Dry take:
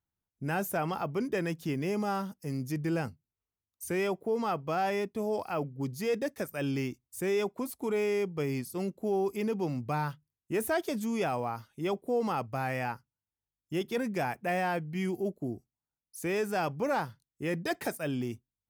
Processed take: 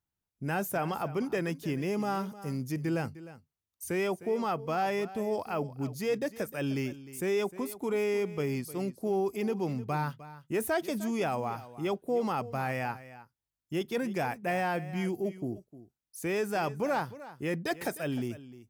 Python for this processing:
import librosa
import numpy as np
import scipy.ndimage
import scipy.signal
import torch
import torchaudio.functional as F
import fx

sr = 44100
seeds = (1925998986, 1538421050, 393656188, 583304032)

y = x + 10.0 ** (-16.0 / 20.0) * np.pad(x, (int(306 * sr / 1000.0), 0))[:len(x)]